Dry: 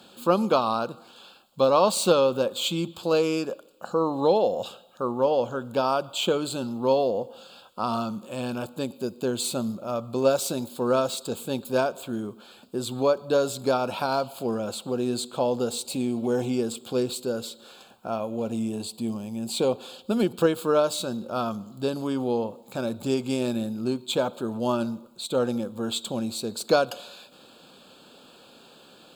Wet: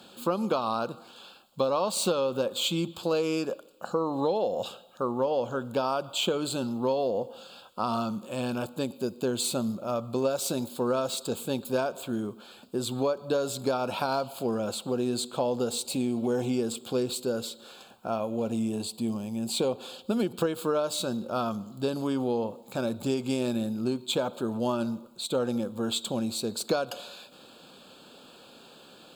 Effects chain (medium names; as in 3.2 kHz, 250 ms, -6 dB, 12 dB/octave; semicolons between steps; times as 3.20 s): compression, threshold -23 dBFS, peak gain reduction 9 dB